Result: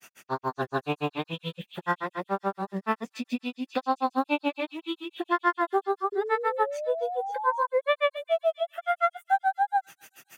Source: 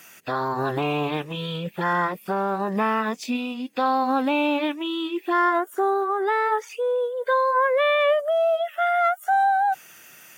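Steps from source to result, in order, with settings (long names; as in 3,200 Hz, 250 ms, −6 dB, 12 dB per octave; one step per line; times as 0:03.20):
granular cloud 100 ms, grains 7 per second, pitch spread up and down by 0 semitones
echo through a band-pass that steps 269 ms, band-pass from 3,400 Hz, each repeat 0.7 octaves, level −8.5 dB
sound drawn into the spectrogram rise, 0:06.12–0:07.67, 400–1,000 Hz −33 dBFS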